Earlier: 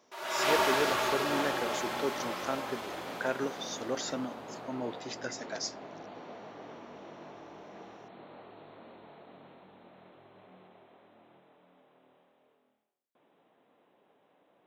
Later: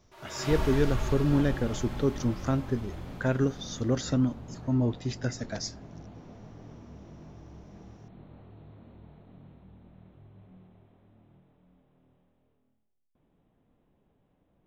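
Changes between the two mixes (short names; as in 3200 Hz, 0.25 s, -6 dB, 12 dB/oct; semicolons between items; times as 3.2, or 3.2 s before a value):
background -10.0 dB; master: remove HPF 490 Hz 12 dB/oct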